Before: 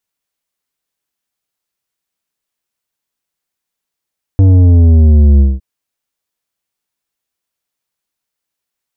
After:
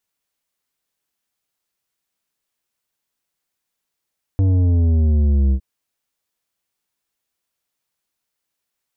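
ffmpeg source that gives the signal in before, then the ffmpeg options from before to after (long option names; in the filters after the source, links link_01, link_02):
-f lavfi -i "aevalsrc='0.596*clip((1.21-t)/0.2,0,1)*tanh(2.99*sin(2*PI*97*1.21/log(65/97)*(exp(log(65/97)*t/1.21)-1)))/tanh(2.99)':duration=1.21:sample_rate=44100"
-af "alimiter=limit=-13.5dB:level=0:latency=1"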